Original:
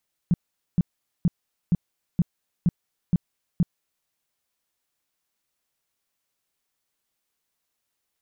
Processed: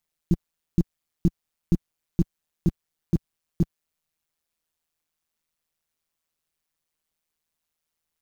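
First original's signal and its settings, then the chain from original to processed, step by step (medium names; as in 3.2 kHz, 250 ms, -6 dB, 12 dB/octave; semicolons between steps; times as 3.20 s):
tone bursts 173 Hz, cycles 5, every 0.47 s, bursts 8, -15 dBFS
bass shelf 61 Hz +10.5 dB; in parallel at -6 dB: bit crusher 6-bit; on the sum: AM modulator 160 Hz, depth 70%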